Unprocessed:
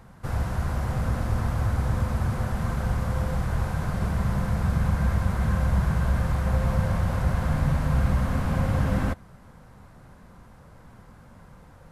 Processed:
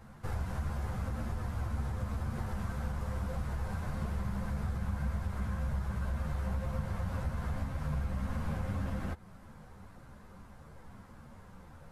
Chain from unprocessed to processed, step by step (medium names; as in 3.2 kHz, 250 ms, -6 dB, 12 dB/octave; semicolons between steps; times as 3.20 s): compression 4:1, threshold -30 dBFS, peak gain reduction 11.5 dB; three-phase chorus